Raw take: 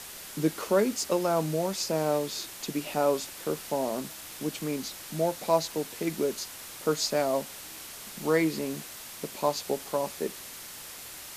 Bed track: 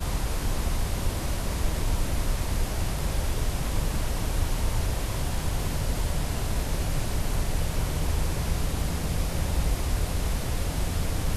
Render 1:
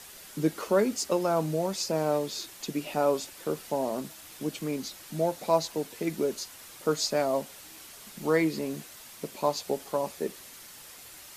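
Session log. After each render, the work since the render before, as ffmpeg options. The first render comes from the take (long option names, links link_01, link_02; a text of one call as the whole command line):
ffmpeg -i in.wav -af "afftdn=noise_reduction=6:noise_floor=-44" out.wav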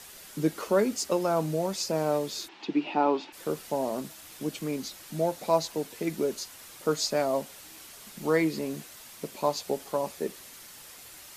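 ffmpeg -i in.wav -filter_complex "[0:a]asplit=3[link_01][link_02][link_03];[link_01]afade=type=out:start_time=2.47:duration=0.02[link_04];[link_02]highpass=frequency=180:width=0.5412,highpass=frequency=180:width=1.3066,equalizer=frequency=320:width_type=q:width=4:gain=9,equalizer=frequency=570:width_type=q:width=4:gain=-6,equalizer=frequency=870:width_type=q:width=4:gain=10,equalizer=frequency=2600:width_type=q:width=4:gain=4,lowpass=frequency=4100:width=0.5412,lowpass=frequency=4100:width=1.3066,afade=type=in:start_time=2.47:duration=0.02,afade=type=out:start_time=3.32:duration=0.02[link_05];[link_03]afade=type=in:start_time=3.32:duration=0.02[link_06];[link_04][link_05][link_06]amix=inputs=3:normalize=0" out.wav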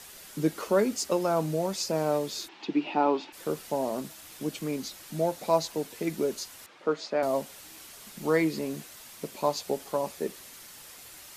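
ffmpeg -i in.wav -filter_complex "[0:a]asettb=1/sr,asplit=3[link_01][link_02][link_03];[link_01]atrim=end=6.664[link_04];[link_02]atrim=start=6.66:end=7.23,asetpts=PTS-STARTPTS,afade=type=in:duration=0.004:curve=qsin,afade=type=out:start_time=0.566:duration=0.004:curve=qsin,highpass=240,lowpass=2700[link_05];[link_03]atrim=start=7.226[link_06];[link_04][link_05]acrossfade=duration=0.004:curve1=hsin:curve2=qsin[link_07];[link_07][link_06]acrossfade=duration=0.004:curve1=qsin:curve2=hsin" out.wav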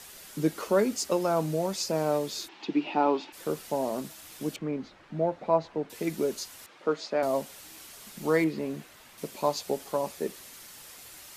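ffmpeg -i in.wav -filter_complex "[0:a]asettb=1/sr,asplit=3[link_01][link_02][link_03];[link_01]atrim=end=4.564[link_04];[link_02]atrim=start=4.56:end=5.9,asetpts=PTS-STARTPTS,afade=type=in:duration=0.004:curve=qsin,afade=type=out:start_time=1.336:duration=0.004:curve=qsin,lowpass=1900[link_05];[link_03]atrim=start=5.896[link_06];[link_04][link_05]acrossfade=duration=0.004:curve1=hsin:curve2=qsin[link_07];[link_07][link_06]acrossfade=duration=0.004:curve1=qsin:curve2=hsin,asettb=1/sr,asplit=3[link_08][link_09][link_10];[link_08]atrim=end=8.444[link_11];[link_09]atrim=start=8.44:end=9.18,asetpts=PTS-STARTPTS,afade=type=in:duration=0.004:curve=qsin,afade=type=out:start_time=0.736:duration=0.004:curve=qsin,acrossover=split=3300[link_12][link_13];[link_13]acompressor=threshold=-55dB:ratio=4:attack=1:release=60[link_14];[link_12][link_14]amix=inputs=2:normalize=0[link_15];[link_10]atrim=start=9.176[link_16];[link_11][link_15]acrossfade=duration=0.004:curve1=hsin:curve2=qsin[link_17];[link_17][link_16]acrossfade=duration=0.004:curve1=qsin:curve2=hsin" out.wav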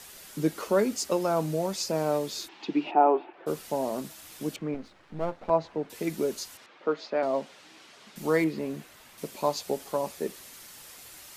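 ffmpeg -i in.wav -filter_complex "[0:a]asplit=3[link_01][link_02][link_03];[link_01]afade=type=out:start_time=2.9:duration=0.02[link_04];[link_02]highpass=240,equalizer=frequency=250:width_type=q:width=4:gain=-7,equalizer=frequency=360:width_type=q:width=4:gain=9,equalizer=frequency=710:width_type=q:width=4:gain=9,equalizer=frequency=2000:width_type=q:width=4:gain=-5,lowpass=frequency=2300:width=0.5412,lowpass=frequency=2300:width=1.3066,afade=type=in:start_time=2.9:duration=0.02,afade=type=out:start_time=3.46:duration=0.02[link_05];[link_03]afade=type=in:start_time=3.46:duration=0.02[link_06];[link_04][link_05][link_06]amix=inputs=3:normalize=0,asettb=1/sr,asplit=3[link_07][link_08][link_09];[link_07]atrim=end=4.744[link_10];[link_08]atrim=start=4.74:end=5.5,asetpts=PTS-STARTPTS,afade=type=in:duration=0.004:curve=qsin,afade=type=out:start_time=0.756:duration=0.004:curve=qsin,aeval=exprs='if(lt(val(0),0),0.251*val(0),val(0))':channel_layout=same[link_11];[link_09]atrim=start=5.496[link_12];[link_10][link_11]acrossfade=duration=0.004:curve1=hsin:curve2=qsin[link_13];[link_13][link_12]acrossfade=duration=0.004:curve1=qsin:curve2=hsin,asettb=1/sr,asplit=3[link_14][link_15][link_16];[link_14]atrim=end=6.574[link_17];[link_15]atrim=start=6.57:end=8.16,asetpts=PTS-STARTPTS,afade=type=in:duration=0.004:curve=qsin,afade=type=out:start_time=1.586:duration=0.004:curve=qsin,highpass=170,lowpass=4200[link_18];[link_16]atrim=start=8.156[link_19];[link_17][link_18]acrossfade=duration=0.004:curve1=hsin:curve2=qsin[link_20];[link_20][link_19]acrossfade=duration=0.004:curve1=qsin:curve2=hsin" out.wav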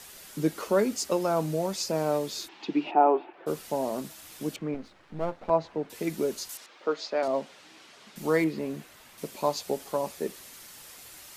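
ffmpeg -i in.wav -filter_complex "[0:a]asettb=1/sr,asplit=3[link_01][link_02][link_03];[link_01]atrim=end=6.494[link_04];[link_02]atrim=start=6.49:end=7.28,asetpts=PTS-STARTPTS,afade=type=in:duration=0.004:curve=qsin,afade=type=out:start_time=0.786:duration=0.004:curve=qsin,bass=frequency=250:gain=-7,treble=frequency=4000:gain=10[link_05];[link_03]atrim=start=7.276[link_06];[link_04][link_05]acrossfade=duration=0.004:curve1=hsin:curve2=qsin[link_07];[link_07][link_06]acrossfade=duration=0.004:curve1=qsin:curve2=hsin" out.wav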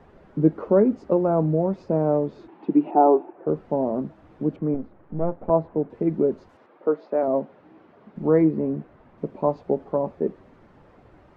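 ffmpeg -i in.wav -af "lowpass=1600,tiltshelf=frequency=1100:gain=10" out.wav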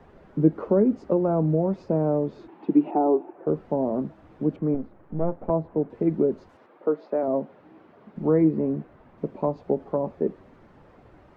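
ffmpeg -i in.wav -filter_complex "[0:a]acrossover=split=410[link_01][link_02];[link_02]acompressor=threshold=-25dB:ratio=4[link_03];[link_01][link_03]amix=inputs=2:normalize=0" out.wav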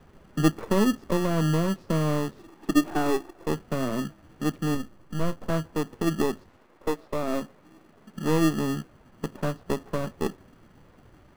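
ffmpeg -i in.wav -filter_complex "[0:a]acrossover=split=330[link_01][link_02];[link_01]acrusher=samples=29:mix=1:aa=0.000001[link_03];[link_02]aeval=exprs='max(val(0),0)':channel_layout=same[link_04];[link_03][link_04]amix=inputs=2:normalize=0" out.wav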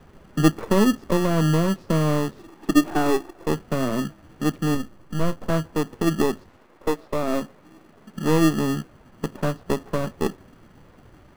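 ffmpeg -i in.wav -af "volume=4dB" out.wav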